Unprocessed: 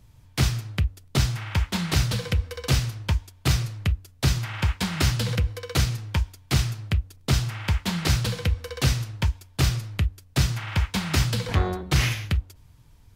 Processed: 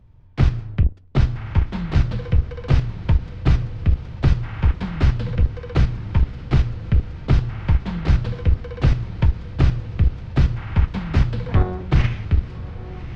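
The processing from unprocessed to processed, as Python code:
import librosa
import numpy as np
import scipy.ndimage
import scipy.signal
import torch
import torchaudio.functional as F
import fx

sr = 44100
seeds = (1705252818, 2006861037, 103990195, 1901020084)

p1 = fx.octave_divider(x, sr, octaves=2, level_db=-5.0)
p2 = fx.echo_diffused(p1, sr, ms=1186, feedback_pct=51, wet_db=-13)
p3 = fx.level_steps(p2, sr, step_db=21)
p4 = p2 + (p3 * 10.0 ** (2.0 / 20.0))
y = fx.spacing_loss(p4, sr, db_at_10k=37)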